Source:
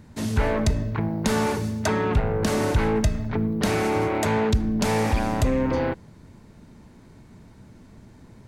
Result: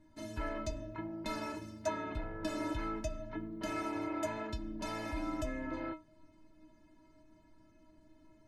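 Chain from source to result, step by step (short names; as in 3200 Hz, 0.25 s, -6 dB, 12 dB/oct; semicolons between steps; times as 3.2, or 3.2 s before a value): LPF 3000 Hz 6 dB/oct; metallic resonator 310 Hz, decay 0.27 s, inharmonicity 0.008; gain +3.5 dB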